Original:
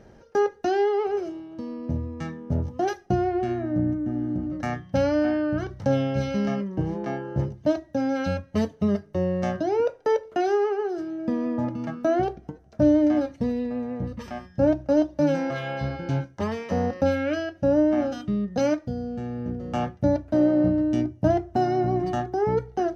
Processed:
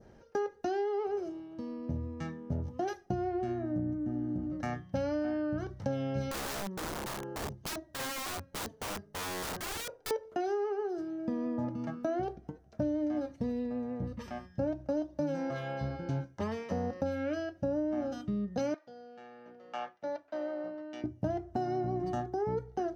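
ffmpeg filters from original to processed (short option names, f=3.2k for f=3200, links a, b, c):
-filter_complex "[0:a]asettb=1/sr,asplit=3[a][b][c];[a]atrim=end=6.314[d];[b]atrim=start=6.31:end=10.11,asetpts=PTS-STARTPTS,afade=t=in:d=0.004:c=qsin,afade=t=out:st=3.796:d=0.004:c=qsin,aeval=exprs='(mod(18.8*val(0)+1,2)-1)/18.8':c=same[e];[c]atrim=start=10.106[f];[d][e]acrossfade=d=0.004:c1=hsin:c2=qsin[g];[g][f]acrossfade=d=0.004:c1=qsin:c2=hsin,asettb=1/sr,asplit=3[h][i][j];[h]atrim=end=18.744[k];[i]atrim=start=18.74:end=21.04,asetpts=PTS-STARTPTS,afade=t=in:d=0.004:c=qsin,afade=t=out:st=2.296:d=0.004:c=qsin,highpass=770,lowpass=4.5k[l];[j]atrim=start=21.036[m];[k][l]acrossfade=d=0.004:c1=hsin:c2=qsin[n];[n][m]acrossfade=d=0.004:c1=qsin:c2=hsin,adynamicequalizer=threshold=0.00398:dfrequency=2500:dqfactor=0.99:tfrequency=2500:tqfactor=0.99:attack=5:release=100:ratio=0.375:range=3:mode=cutabove:tftype=bell,acompressor=threshold=-23dB:ratio=6,volume=-6dB"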